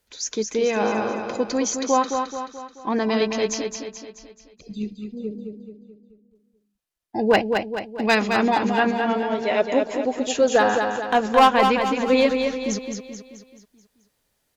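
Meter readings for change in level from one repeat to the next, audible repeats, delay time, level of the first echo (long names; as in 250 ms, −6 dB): −6.0 dB, 5, 216 ms, −5.5 dB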